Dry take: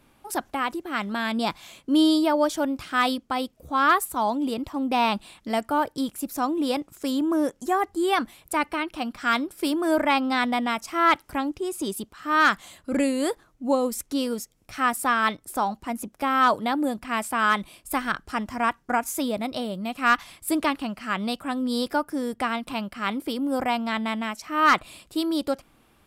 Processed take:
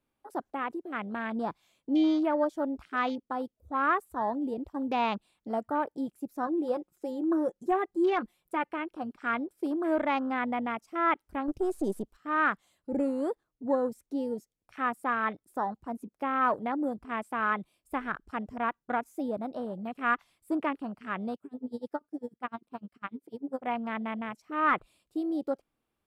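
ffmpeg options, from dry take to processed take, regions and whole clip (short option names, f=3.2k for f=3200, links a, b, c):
-filter_complex "[0:a]asettb=1/sr,asplit=3[a][b][c];[a]atrim=end=4.704[d];[b]atrim=start=4.7:end=5.16,asetpts=PTS-STARTPTS,afade=t=in:d=0.004:c=qsin,afade=t=out:st=0.456:d=0.004:c=qsin,agate=range=-7dB:threshold=-36dB:ratio=16:release=100:detection=peak,highshelf=f=3.4k:g=9[e];[c]atrim=start=5.156[f];[d][e]acrossfade=d=0.004:c1=hsin:c2=qsin[g];[g][f]acrossfade=d=0.004:c1=qsin:c2=hsin,asettb=1/sr,asplit=3[h][i][j];[h]atrim=end=6.464[k];[i]atrim=start=6.46:end=8.69,asetpts=PTS-STARTPTS,afade=t=in:d=0.004:c=qsin,afade=t=out:st=2.226:d=0.004:c=qsin,aecho=1:1:5.6:0.57,atrim=end_sample=98343,asoftclip=type=hard:threshold=-13.5dB[l];[j]atrim=start=8.686[m];[k][l]acrossfade=d=0.004:c1=hsin:c2=qsin[n];[n][m]acrossfade=d=0.004:c1=qsin:c2=hsin,asettb=1/sr,asplit=3[o][p][q];[o]atrim=end=11.484[r];[p]atrim=start=11.48:end=12.17,asetpts=PTS-STARTPTS,afade=t=in:d=0.004:c=qsin,afade=t=out:st=0.686:d=0.004:c=qsin,aeval=exprs='if(lt(val(0),0),0.447*val(0),val(0))':c=same,highshelf=f=7.1k:g=11,acontrast=77[s];[q]atrim=start=12.166[t];[r][s]acrossfade=d=0.004:c1=hsin:c2=qsin[u];[u][t]acrossfade=d=0.004:c1=qsin:c2=hsin,asettb=1/sr,asplit=3[v][w][x];[v]atrim=end=21.354[y];[w]atrim=start=21.35:end=23.67,asetpts=PTS-STARTPTS,afade=t=in:d=0.004:c=qsin,afade=t=out:st=2.316:d=0.004:c=qsin,highpass=44,aeval=exprs='val(0)*pow(10,-24*(0.5-0.5*cos(2*PI*10*n/s))/20)':c=same[z];[x]atrim=start=23.666[aa];[y][z]acrossfade=d=0.004:c1=hsin:c2=qsin[ab];[ab][aa]acrossfade=d=0.004:c1=qsin:c2=hsin,afwtdn=0.0251,acrossover=split=2900[ac][ad];[ad]acompressor=threshold=-47dB:ratio=4:attack=1:release=60[ae];[ac][ae]amix=inputs=2:normalize=0,equalizer=f=450:w=1.5:g=3.5,volume=-7dB"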